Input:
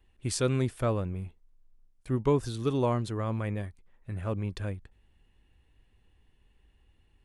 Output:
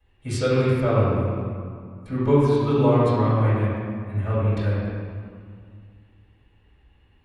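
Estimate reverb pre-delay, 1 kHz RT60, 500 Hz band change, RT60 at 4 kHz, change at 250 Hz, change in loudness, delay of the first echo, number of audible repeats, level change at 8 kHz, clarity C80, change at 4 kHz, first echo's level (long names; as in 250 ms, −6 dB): 3 ms, 2.2 s, +9.5 dB, 1.4 s, +9.0 dB, +8.5 dB, no echo audible, no echo audible, can't be measured, −1.0 dB, +3.5 dB, no echo audible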